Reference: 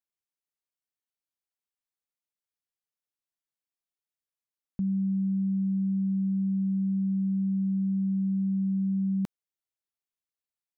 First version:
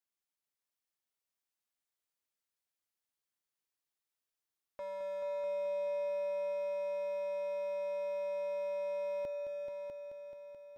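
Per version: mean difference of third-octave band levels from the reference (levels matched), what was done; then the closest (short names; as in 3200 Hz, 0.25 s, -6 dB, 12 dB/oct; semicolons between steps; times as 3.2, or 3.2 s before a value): 12.5 dB: low shelf 300 Hz -4.5 dB; wavefolder -35 dBFS; on a send: multi-head echo 0.216 s, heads all three, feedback 57%, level -9 dB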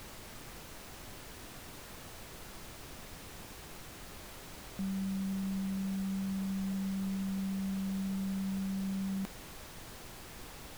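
19.5 dB: low shelf 320 Hz -11.5 dB; added noise pink -48 dBFS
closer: first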